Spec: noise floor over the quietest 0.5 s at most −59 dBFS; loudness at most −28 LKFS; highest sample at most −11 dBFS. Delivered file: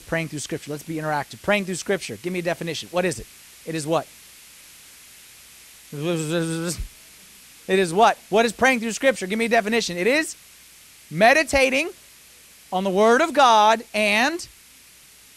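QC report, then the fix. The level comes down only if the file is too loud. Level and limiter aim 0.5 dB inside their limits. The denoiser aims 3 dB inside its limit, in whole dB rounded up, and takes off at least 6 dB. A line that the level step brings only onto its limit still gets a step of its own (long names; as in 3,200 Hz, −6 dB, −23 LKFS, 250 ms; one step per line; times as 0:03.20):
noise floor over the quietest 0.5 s −50 dBFS: out of spec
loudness −21.0 LKFS: out of spec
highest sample −2.5 dBFS: out of spec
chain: broadband denoise 6 dB, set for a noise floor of −50 dBFS
level −7.5 dB
brickwall limiter −11.5 dBFS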